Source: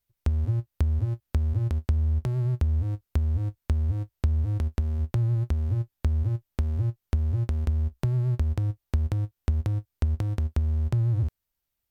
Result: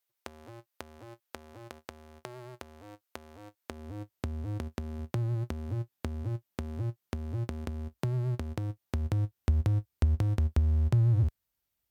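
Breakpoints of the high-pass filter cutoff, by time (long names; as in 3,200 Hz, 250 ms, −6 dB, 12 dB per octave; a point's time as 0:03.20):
0:03.48 540 Hz
0:04.16 160 Hz
0:08.68 160 Hz
0:09.65 49 Hz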